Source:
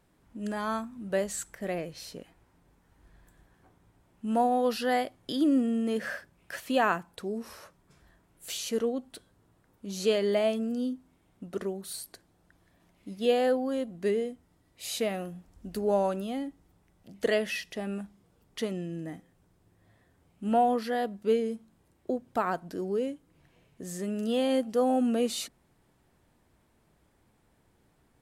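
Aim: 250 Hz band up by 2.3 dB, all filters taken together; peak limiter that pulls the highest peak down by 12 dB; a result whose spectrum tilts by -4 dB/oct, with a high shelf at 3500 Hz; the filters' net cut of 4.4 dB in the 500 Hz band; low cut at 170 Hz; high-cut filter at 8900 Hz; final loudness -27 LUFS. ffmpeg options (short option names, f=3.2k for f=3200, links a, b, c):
-af "highpass=170,lowpass=8.9k,equalizer=f=250:t=o:g=5,equalizer=f=500:t=o:g=-6.5,highshelf=f=3.5k:g=6,volume=7.5dB,alimiter=limit=-17dB:level=0:latency=1"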